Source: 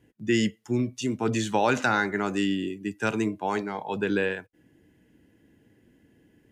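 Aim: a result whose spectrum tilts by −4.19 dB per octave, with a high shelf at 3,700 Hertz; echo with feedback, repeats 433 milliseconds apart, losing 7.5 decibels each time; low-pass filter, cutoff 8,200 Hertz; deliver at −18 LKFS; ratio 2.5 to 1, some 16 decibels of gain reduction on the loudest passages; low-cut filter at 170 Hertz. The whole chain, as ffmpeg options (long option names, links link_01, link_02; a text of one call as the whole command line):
ffmpeg -i in.wav -af "highpass=170,lowpass=8200,highshelf=frequency=3700:gain=-8,acompressor=threshold=-45dB:ratio=2.5,aecho=1:1:433|866|1299|1732|2165:0.422|0.177|0.0744|0.0312|0.0131,volume=24dB" out.wav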